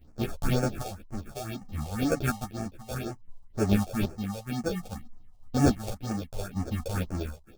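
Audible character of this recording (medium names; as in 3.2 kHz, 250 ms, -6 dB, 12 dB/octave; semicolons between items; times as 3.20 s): aliases and images of a low sample rate 1 kHz, jitter 0%; phasing stages 4, 2 Hz, lowest notch 260–3500 Hz; chopped level 0.61 Hz, depth 60%, duty 50%; a shimmering, thickened sound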